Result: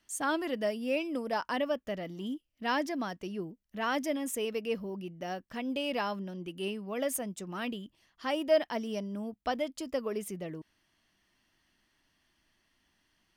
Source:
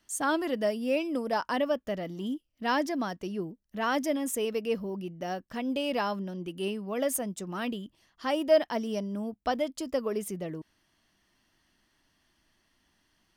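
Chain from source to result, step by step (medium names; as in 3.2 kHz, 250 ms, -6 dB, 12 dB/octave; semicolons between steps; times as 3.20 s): peaking EQ 2.4 kHz +3.5 dB 0.99 oct; trim -3.5 dB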